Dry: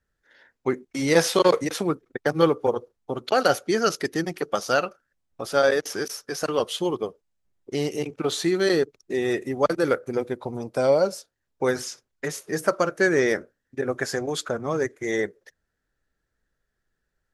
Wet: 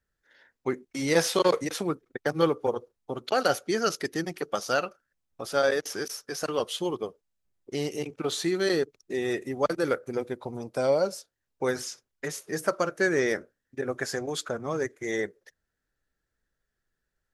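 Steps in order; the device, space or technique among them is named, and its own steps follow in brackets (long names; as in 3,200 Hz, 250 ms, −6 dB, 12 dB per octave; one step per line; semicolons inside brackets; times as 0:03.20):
exciter from parts (in parallel at −9.5 dB: high-pass filter 2,700 Hz 6 dB per octave + soft clipping −23.5 dBFS, distortion −15 dB)
on the sum: level −4.5 dB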